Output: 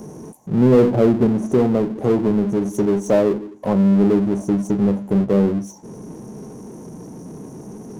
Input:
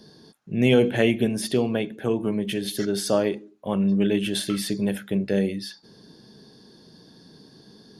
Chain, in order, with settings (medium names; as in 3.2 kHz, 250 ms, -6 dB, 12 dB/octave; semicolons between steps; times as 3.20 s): low-pass that closes with the level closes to 1.2 kHz, closed at -20 dBFS; brick-wall FIR band-stop 1.1–5.6 kHz; power-law waveshaper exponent 0.7; trim +3.5 dB